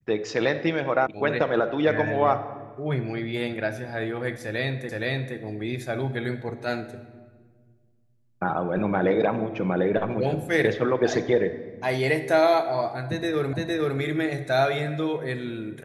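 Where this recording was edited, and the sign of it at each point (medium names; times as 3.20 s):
1.07 s: sound stops dead
4.89 s: repeat of the last 0.47 s
13.53 s: repeat of the last 0.46 s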